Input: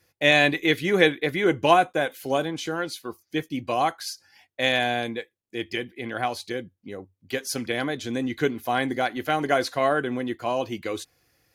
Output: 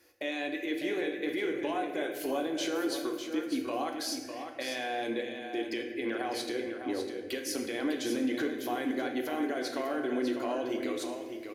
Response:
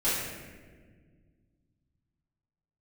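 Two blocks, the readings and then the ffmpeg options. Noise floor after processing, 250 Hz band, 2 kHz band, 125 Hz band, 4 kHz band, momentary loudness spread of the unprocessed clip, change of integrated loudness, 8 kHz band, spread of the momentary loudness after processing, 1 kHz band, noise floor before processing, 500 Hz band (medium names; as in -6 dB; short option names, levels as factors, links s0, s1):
-42 dBFS, -3.5 dB, -12.0 dB, -20.5 dB, -10.0 dB, 16 LU, -9.0 dB, -3.5 dB, 5 LU, -12.0 dB, -77 dBFS, -8.0 dB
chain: -filter_complex "[0:a]lowshelf=f=230:t=q:w=3:g=-9,acompressor=threshold=0.0355:ratio=6,alimiter=level_in=1.41:limit=0.0631:level=0:latency=1:release=84,volume=0.708,aecho=1:1:601:0.398,asplit=2[s0][s1];[1:a]atrim=start_sample=2205[s2];[s1][s2]afir=irnorm=-1:irlink=0,volume=0.224[s3];[s0][s3]amix=inputs=2:normalize=0"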